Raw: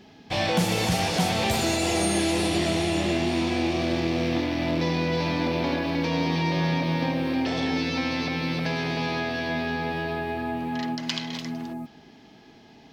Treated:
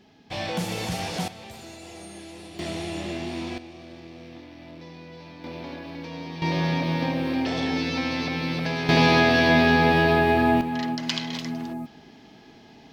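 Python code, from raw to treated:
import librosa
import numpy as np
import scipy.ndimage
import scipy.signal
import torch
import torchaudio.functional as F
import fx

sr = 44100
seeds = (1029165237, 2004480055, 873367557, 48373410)

y = fx.gain(x, sr, db=fx.steps((0.0, -5.5), (1.28, -18.0), (2.59, -7.0), (3.58, -18.0), (5.44, -11.0), (6.42, 0.0), (8.89, 10.0), (10.61, 1.5)))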